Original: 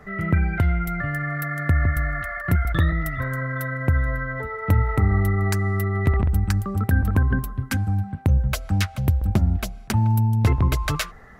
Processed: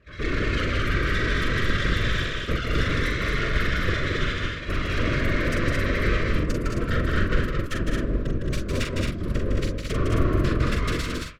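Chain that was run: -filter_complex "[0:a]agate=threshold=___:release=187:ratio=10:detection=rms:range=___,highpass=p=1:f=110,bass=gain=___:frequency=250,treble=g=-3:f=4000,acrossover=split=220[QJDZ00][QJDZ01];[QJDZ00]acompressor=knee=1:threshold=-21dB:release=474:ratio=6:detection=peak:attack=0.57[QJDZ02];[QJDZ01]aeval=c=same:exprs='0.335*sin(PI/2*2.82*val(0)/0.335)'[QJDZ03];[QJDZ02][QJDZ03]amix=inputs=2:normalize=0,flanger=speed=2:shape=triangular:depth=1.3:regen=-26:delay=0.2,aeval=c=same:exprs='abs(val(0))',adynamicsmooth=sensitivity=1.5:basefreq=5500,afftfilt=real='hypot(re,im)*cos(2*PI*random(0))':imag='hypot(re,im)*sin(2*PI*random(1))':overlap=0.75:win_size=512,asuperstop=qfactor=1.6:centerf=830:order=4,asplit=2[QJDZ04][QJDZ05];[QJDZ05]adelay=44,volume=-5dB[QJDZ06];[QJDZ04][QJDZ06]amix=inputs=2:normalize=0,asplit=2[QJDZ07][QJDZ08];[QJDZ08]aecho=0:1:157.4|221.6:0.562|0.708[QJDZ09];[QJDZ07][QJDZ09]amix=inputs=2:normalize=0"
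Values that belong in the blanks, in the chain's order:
-26dB, -12dB, 10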